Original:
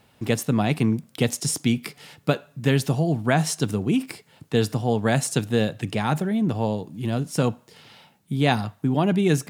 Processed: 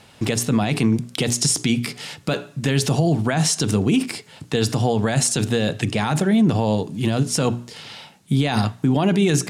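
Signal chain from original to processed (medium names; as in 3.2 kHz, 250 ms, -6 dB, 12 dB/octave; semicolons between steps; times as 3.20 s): low-pass 8.4 kHz 12 dB/octave; treble shelf 3.4 kHz +7.5 dB; hum notches 60/120/180/240/300/360/420 Hz; loudness maximiser +17 dB; trim -8.5 dB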